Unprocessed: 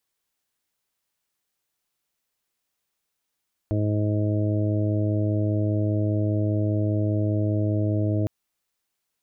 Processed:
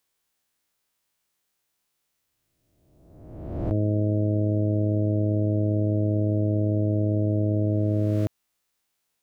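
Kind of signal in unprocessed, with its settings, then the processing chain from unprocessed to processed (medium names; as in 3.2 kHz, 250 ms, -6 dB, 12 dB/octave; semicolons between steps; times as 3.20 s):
steady additive tone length 4.56 s, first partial 105 Hz, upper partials -10/-5/-14/-14/-10.5 dB, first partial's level -22 dB
reverse spectral sustain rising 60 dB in 1.31 s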